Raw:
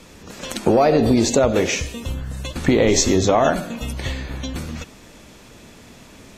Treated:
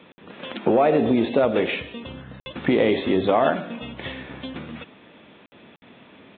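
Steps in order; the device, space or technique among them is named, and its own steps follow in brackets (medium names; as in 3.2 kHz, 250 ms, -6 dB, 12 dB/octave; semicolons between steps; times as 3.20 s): call with lost packets (high-pass 170 Hz 12 dB/octave; resampled via 8 kHz; lost packets of 60 ms random); trim -2.5 dB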